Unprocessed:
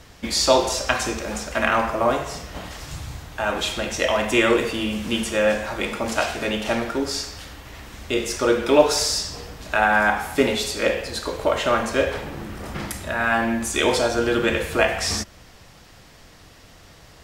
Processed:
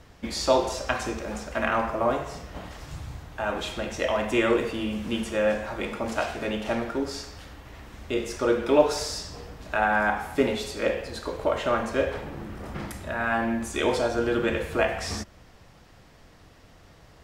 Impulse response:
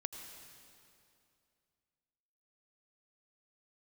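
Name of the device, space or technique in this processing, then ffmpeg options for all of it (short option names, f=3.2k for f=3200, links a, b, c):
behind a face mask: -af "highshelf=f=2.3k:g=-8,volume=-3.5dB"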